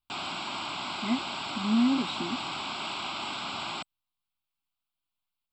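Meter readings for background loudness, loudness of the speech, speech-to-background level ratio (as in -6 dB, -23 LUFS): -34.0 LUFS, -30.0 LUFS, 4.0 dB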